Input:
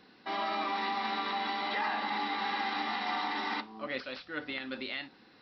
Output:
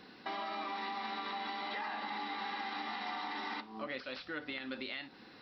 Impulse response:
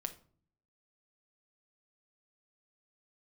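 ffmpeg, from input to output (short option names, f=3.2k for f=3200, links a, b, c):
-af "acompressor=threshold=-43dB:ratio=4,volume=4dB"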